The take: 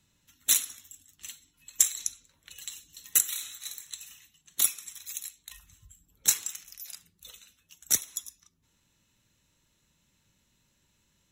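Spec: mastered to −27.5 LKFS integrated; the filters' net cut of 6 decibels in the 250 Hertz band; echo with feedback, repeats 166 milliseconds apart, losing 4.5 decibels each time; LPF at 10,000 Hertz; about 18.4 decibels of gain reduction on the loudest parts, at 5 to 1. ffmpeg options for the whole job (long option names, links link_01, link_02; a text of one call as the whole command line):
ffmpeg -i in.wav -af "lowpass=10000,equalizer=frequency=250:width_type=o:gain=-8,acompressor=threshold=-42dB:ratio=5,aecho=1:1:166|332|498|664|830|996|1162|1328|1494:0.596|0.357|0.214|0.129|0.0772|0.0463|0.0278|0.0167|0.01,volume=17.5dB" out.wav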